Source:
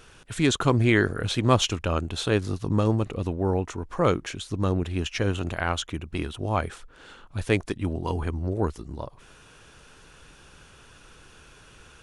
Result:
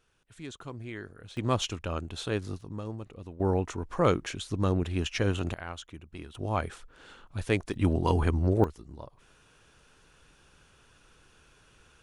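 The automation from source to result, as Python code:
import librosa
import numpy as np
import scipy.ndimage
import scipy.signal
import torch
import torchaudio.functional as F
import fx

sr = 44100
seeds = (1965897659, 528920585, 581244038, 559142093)

y = fx.gain(x, sr, db=fx.steps((0.0, -20.0), (1.37, -7.5), (2.61, -15.0), (3.4, -2.0), (5.54, -13.0), (6.35, -4.0), (7.74, 3.0), (8.64, -9.0)))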